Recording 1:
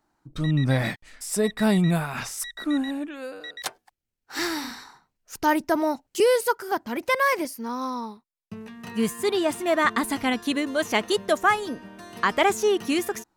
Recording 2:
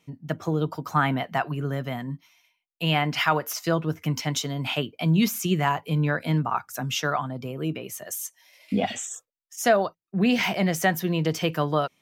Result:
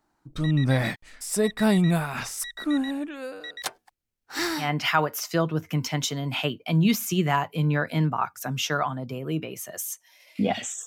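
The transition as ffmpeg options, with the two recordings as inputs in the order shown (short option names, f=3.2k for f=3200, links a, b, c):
-filter_complex "[0:a]apad=whole_dur=10.86,atrim=end=10.86,atrim=end=4.71,asetpts=PTS-STARTPTS[a];[1:a]atrim=start=2.9:end=9.19,asetpts=PTS-STARTPTS[b];[a][b]acrossfade=d=0.14:c1=tri:c2=tri"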